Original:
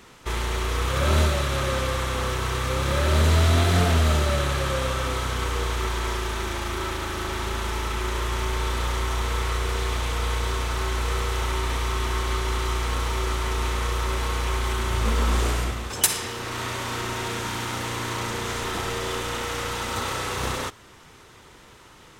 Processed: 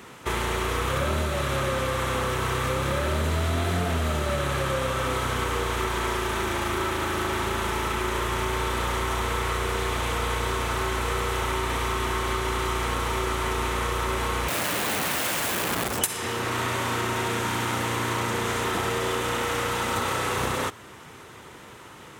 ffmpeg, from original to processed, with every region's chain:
ffmpeg -i in.wav -filter_complex "[0:a]asettb=1/sr,asplit=3[link_01][link_02][link_03];[link_01]atrim=end=14.484[link_04];[link_02]atrim=start=14.48:end=15.99,asetpts=PTS-STARTPTS,afade=type=in:duration=0.004:curve=qsin,afade=type=out:start_time=1.506:duration=0.004:curve=qsin,tiltshelf=frequency=1200:gain=4,aeval=exprs='(mod(17.8*val(0)+1,2)-1)/17.8':channel_layout=same[link_05];[link_03]atrim=start=15.986[link_06];[link_04][link_05]acrossfade=duration=0.004:curve1=hsin:curve2=qsin[link_07];[link_07][link_06]acrossfade=duration=0.004:curve1=qsin:curve2=hsin,highpass=92,equalizer=frequency=4900:width_type=o:width=1.1:gain=-6,acompressor=threshold=-28dB:ratio=6,volume=5.5dB" out.wav

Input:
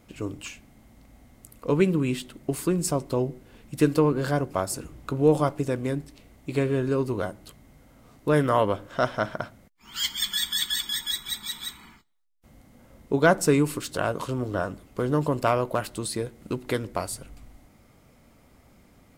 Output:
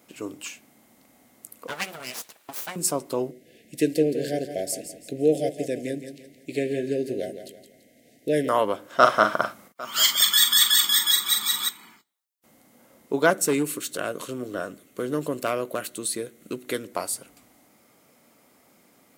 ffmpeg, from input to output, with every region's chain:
ffmpeg -i in.wav -filter_complex "[0:a]asettb=1/sr,asplit=3[link_01][link_02][link_03];[link_01]atrim=end=1.674[link_04];[link_02]atrim=start=1.67:end=2.76,asetpts=PTS-STARTPTS,afade=type=in:duration=0.004:curve=qsin,afade=type=out:start_time=1.086:duration=0.004:curve=qsin,highpass=frequency=930:poles=1,equalizer=frequency=1600:width_type=o:width=1.7:gain=7,aeval=exprs='abs(val(0))':channel_layout=same[link_05];[link_03]atrim=start=2.756[link_06];[link_04][link_05]acrossfade=duration=0.004:curve1=hsin:curve2=qsin[link_07];[link_07][link_06]acrossfade=duration=0.004:curve1=qsin:curve2=hsin,asettb=1/sr,asplit=3[link_08][link_09][link_10];[link_08]atrim=end=3.314[link_11];[link_09]atrim=start=3.31:end=8.49,asetpts=PTS-STARTPTS,afade=type=in:duration=0.004:curve=qsin,afade=type=out:start_time=5.176:duration=0.004:curve=qsin,asuperstop=centerf=1100:order=12:qfactor=1.1,highshelf=frequency=9000:gain=-7,aecho=1:1:168|336|504|672:0.316|0.114|0.041|0.0148,atrim=end_sample=228438[link_12];[link_10]atrim=start=8.486[link_13];[link_11][link_12]acrossfade=duration=0.004:curve1=hsin:curve2=qsin[link_14];[link_14][link_13]acrossfade=duration=0.004:curve1=qsin:curve2=hsin,asettb=1/sr,asplit=3[link_15][link_16][link_17];[link_15]atrim=end=8.994[link_18];[link_16]atrim=start=8.99:end=11.69,asetpts=PTS-STARTPTS,afade=type=in:duration=0.004:curve=qsin,afade=type=out:start_time=2.696:duration=0.004:curve=qsin,equalizer=frequency=1200:width_type=o:width=0.35:gain=10.5,acontrast=37,aecho=1:1:42|801:0.473|0.106,atrim=end_sample=119070[link_19];[link_17]atrim=start=11.686[link_20];[link_18][link_19]acrossfade=duration=0.004:curve1=hsin:curve2=qsin[link_21];[link_21][link_20]acrossfade=duration=0.004:curve1=qsin:curve2=hsin,asettb=1/sr,asplit=3[link_22][link_23][link_24];[link_22]atrim=end=13.304[link_25];[link_23]atrim=start=13.3:end=16.92,asetpts=PTS-STARTPTS,afade=type=in:duration=0.004:curve=qsin,afade=type=out:start_time=3.616:duration=0.004:curve=qsin,equalizer=frequency=890:width_type=o:width=0.58:gain=-12,bandreject=frequency=5000:width=6.8,asoftclip=type=hard:threshold=-15.5dB[link_26];[link_24]atrim=start=16.916[link_27];[link_25][link_26]acrossfade=duration=0.004:curve1=hsin:curve2=qsin[link_28];[link_28][link_27]acrossfade=duration=0.004:curve1=qsin:curve2=hsin,highpass=250,highshelf=frequency=7300:gain=9" out.wav

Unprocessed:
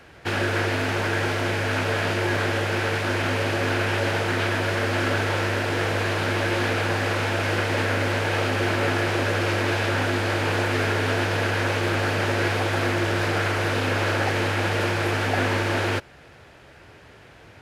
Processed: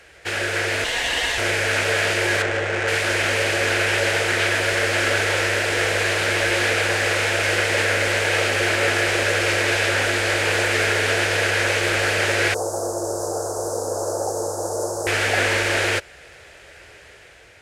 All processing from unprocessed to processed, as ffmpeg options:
ffmpeg -i in.wav -filter_complex "[0:a]asettb=1/sr,asplit=3[link_01][link_02][link_03];[link_01]atrim=end=0.844[link_04];[link_02]atrim=start=0.84:end=1.38,asetpts=PTS-STARTPTS,afade=type=in:duration=0.004:curve=qsin,afade=type=out:start_time=0.536:duration=0.004:curve=qsin,equalizer=frequency=120:width=0.65:gain=-7,aecho=1:1:5.1:0.61,atrim=end_sample=23814,aeval=exprs='val(0)*sin(2*PI*1300*n/s)':channel_layout=same[link_05];[link_03]atrim=start=1.376[link_06];[link_04][link_05]acrossfade=duration=0.004:curve1=hsin:curve2=qsin[link_07];[link_07][link_06]acrossfade=duration=0.004:curve1=qsin:curve2=hsin,asettb=1/sr,asplit=3[link_08][link_09][link_10];[link_08]atrim=end=2.424[link_11];[link_09]atrim=start=2.42:end=2.88,asetpts=PTS-STARTPTS,afade=type=in:duration=0.004:curve=qsin,afade=type=out:start_time=0.456:duration=0.004:curve=qsin,highshelf=frequency=3400:gain=-6.5,adynamicsmooth=sensitivity=2.5:basefreq=1700[link_12];[link_10]atrim=start=2.876[link_13];[link_11][link_12]acrossfade=duration=0.004:curve1=hsin:curve2=qsin[link_14];[link_14][link_13]acrossfade=duration=0.004:curve1=qsin:curve2=hsin,asettb=1/sr,asplit=3[link_15][link_16][link_17];[link_15]atrim=end=12.544[link_18];[link_16]atrim=start=12.54:end=15.07,asetpts=PTS-STARTPTS,afade=type=in:duration=0.004:curve=qsin,afade=type=out:start_time=2.526:duration=0.004:curve=qsin,asuperstop=centerf=2500:order=8:qfactor=0.52,bass=frequency=250:gain=-9,treble=frequency=4000:gain=0,asplit=2[link_19][link_20];[link_20]adelay=18,volume=-13dB[link_21];[link_19][link_21]amix=inputs=2:normalize=0,atrim=end_sample=111573[link_22];[link_17]atrim=start=15.066[link_23];[link_18][link_22]acrossfade=duration=0.004:curve1=hsin:curve2=qsin[link_24];[link_24][link_23]acrossfade=duration=0.004:curve1=qsin:curve2=hsin,equalizer=frequency=125:width_type=o:width=1:gain=-9,equalizer=frequency=250:width_type=o:width=1:gain=-11,equalizer=frequency=500:width_type=o:width=1:gain=4,equalizer=frequency=1000:width_type=o:width=1:gain=-7,equalizer=frequency=2000:width_type=o:width=1:gain=5,equalizer=frequency=8000:width_type=o:width=1:gain=9,dynaudnorm=framelen=300:gausssize=5:maxgain=4dB" out.wav

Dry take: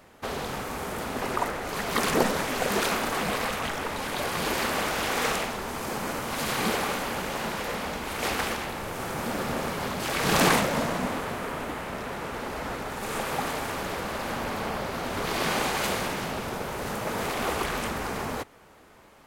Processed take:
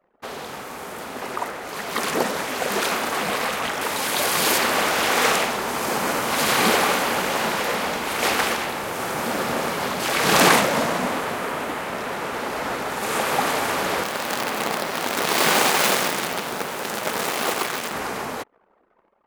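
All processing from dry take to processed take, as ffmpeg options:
ffmpeg -i in.wav -filter_complex "[0:a]asettb=1/sr,asplit=3[link_01][link_02][link_03];[link_01]atrim=end=3.814[link_04];[link_02]atrim=start=3.81:end=4.58,asetpts=PTS-STARTPTS,afade=type=in:duration=0.004:curve=qsin,afade=type=out:start_time=0.766:duration=0.004:curve=qsin,highpass=52,highshelf=frequency=4500:gain=9[link_05];[link_03]atrim=start=4.576[link_06];[link_04][link_05]acrossfade=duration=0.004:curve1=hsin:curve2=qsin[link_07];[link_07][link_06]acrossfade=duration=0.004:curve1=qsin:curve2=hsin,asettb=1/sr,asplit=3[link_08][link_09][link_10];[link_08]atrim=end=14.034[link_11];[link_09]atrim=start=14.03:end=17.93,asetpts=PTS-STARTPTS,afade=type=in:duration=0.004:curve=qsin,afade=type=out:start_time=3.896:duration=0.004:curve=qsin,highpass=frequency=130:width=0.5412,highpass=frequency=130:width=1.3066,acrusher=bits=5:dc=4:mix=0:aa=0.000001,asoftclip=type=hard:threshold=-21dB[link_12];[link_10]atrim=start=17.926[link_13];[link_11][link_12]acrossfade=duration=0.004:curve1=hsin:curve2=qsin[link_14];[link_14][link_13]acrossfade=duration=0.004:curve1=qsin:curve2=hsin,highpass=frequency=280:poles=1,anlmdn=0.00398,dynaudnorm=framelen=660:gausssize=9:maxgain=11.5dB" out.wav

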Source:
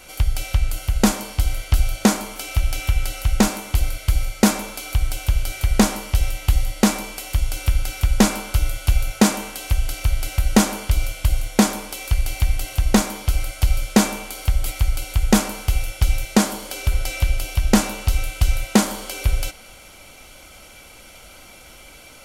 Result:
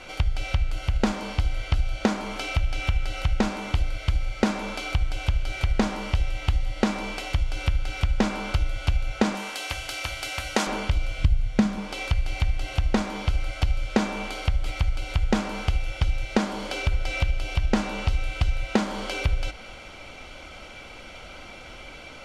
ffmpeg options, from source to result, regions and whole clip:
ffmpeg -i in.wav -filter_complex "[0:a]asettb=1/sr,asplit=3[link_01][link_02][link_03];[link_01]atrim=end=9.354[link_04];[link_02]atrim=start=9.35:end=10.67,asetpts=PTS-STARTPTS,afade=type=in:duration=0.004:curve=qsin,afade=type=out:start_time=1.316:duration=0.004:curve=qsin,highpass=frequency=640:poles=1,highshelf=frequency=7600:gain=11[link_05];[link_03]atrim=start=10.666[link_06];[link_04][link_05]acrossfade=duration=0.004:curve1=hsin:curve2=qsin[link_07];[link_07][link_06]acrossfade=duration=0.004:curve1=qsin:curve2=hsin,asettb=1/sr,asplit=3[link_08][link_09][link_10];[link_08]atrim=end=11.184[link_11];[link_09]atrim=start=11.18:end=11.78,asetpts=PTS-STARTPTS,afade=type=in:duration=0.004:curve=qsin,afade=type=out:start_time=0.596:duration=0.004:curve=qsin,lowshelf=frequency=240:width_type=q:width=1.5:gain=9.5,bandreject=frequency=880:width=13[link_12];[link_10]atrim=start=11.776[link_13];[link_11][link_12]acrossfade=duration=0.004:curve1=hsin:curve2=qsin[link_14];[link_14][link_13]acrossfade=duration=0.004:curve1=qsin:curve2=hsin,lowpass=3800,bandreject=frequency=50:width_type=h:width=6,bandreject=frequency=100:width_type=h:width=6,bandreject=frequency=150:width_type=h:width=6,bandreject=frequency=200:width_type=h:width=6,acompressor=threshold=-25dB:ratio=3,volume=3.5dB" out.wav

